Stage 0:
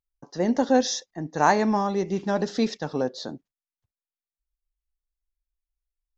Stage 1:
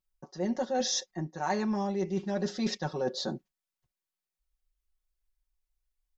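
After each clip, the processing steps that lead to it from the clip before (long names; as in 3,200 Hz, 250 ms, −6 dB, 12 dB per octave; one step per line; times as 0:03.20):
comb filter 5.4 ms, depth 95%
reversed playback
downward compressor 6 to 1, threshold −28 dBFS, peak gain reduction 16.5 dB
reversed playback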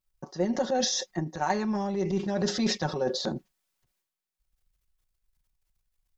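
transient designer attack +7 dB, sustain +11 dB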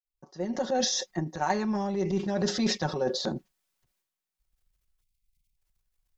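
fade in at the beginning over 0.78 s
time-frequency box erased 0:05.02–0:05.57, 250–2,000 Hz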